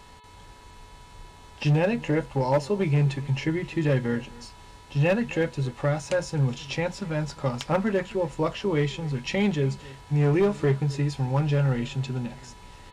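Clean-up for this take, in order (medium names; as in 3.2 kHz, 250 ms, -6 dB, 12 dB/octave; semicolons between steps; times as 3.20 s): clip repair -16 dBFS; de-hum 432 Hz, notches 10; band-stop 980 Hz, Q 30; inverse comb 261 ms -21.5 dB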